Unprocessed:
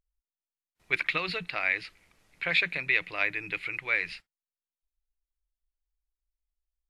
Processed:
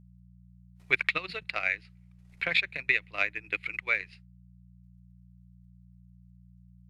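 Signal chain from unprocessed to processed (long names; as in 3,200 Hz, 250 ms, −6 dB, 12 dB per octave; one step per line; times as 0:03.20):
transient designer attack +8 dB, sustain −12 dB
hum with harmonics 60 Hz, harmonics 3, −50 dBFS −1 dB per octave
level −5 dB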